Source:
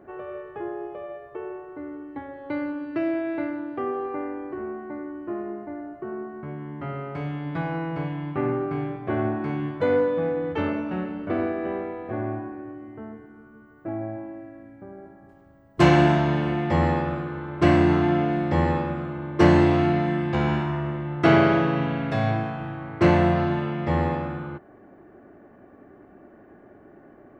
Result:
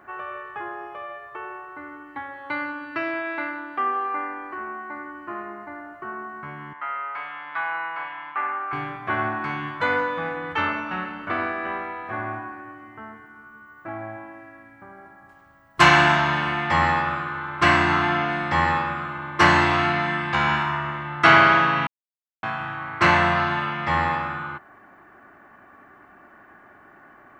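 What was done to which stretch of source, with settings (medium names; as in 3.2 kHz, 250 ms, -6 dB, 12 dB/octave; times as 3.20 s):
3.21–4.96 s: peaking EQ 110 Hz -12.5 dB
6.73–8.73 s: band-pass 760–2400 Hz
21.87–22.43 s: mute
whole clip: resonant low shelf 740 Hz -13.5 dB, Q 1.5; trim +8.5 dB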